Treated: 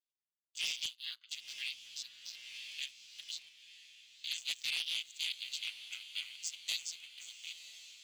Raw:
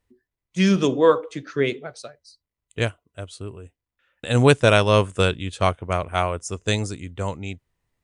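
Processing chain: chord vocoder minor triad, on A2; steep high-pass 3000 Hz 36 dB/oct; spectral gate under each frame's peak -25 dB strong; sample leveller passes 2; limiter -35 dBFS, peak gain reduction 4 dB; hard clip -37 dBFS, distortion -25 dB; diffused feedback echo 1.001 s, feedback 55%, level -13 dB; 1.21–3.49 three-band squash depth 70%; gain +7.5 dB

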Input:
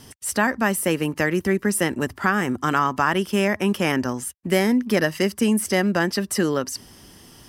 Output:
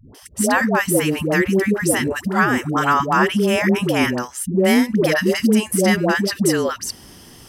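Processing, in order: dispersion highs, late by 0.147 s, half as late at 490 Hz; gain +4 dB

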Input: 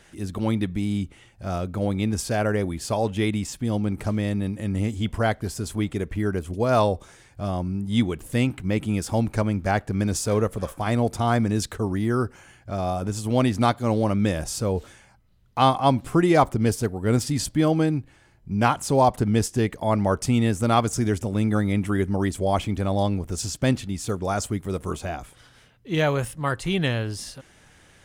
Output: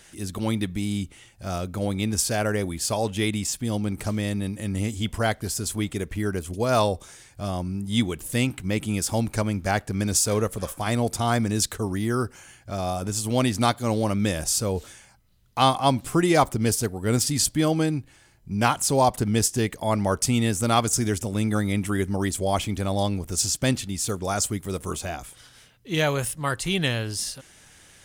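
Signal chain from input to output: high shelf 3300 Hz +11.5 dB; gain -2 dB

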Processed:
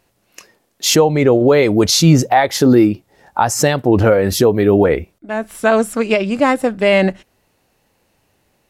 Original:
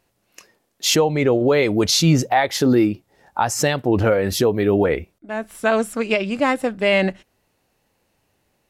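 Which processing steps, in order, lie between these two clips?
dynamic EQ 2800 Hz, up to -4 dB, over -33 dBFS, Q 0.86; gain +5.5 dB

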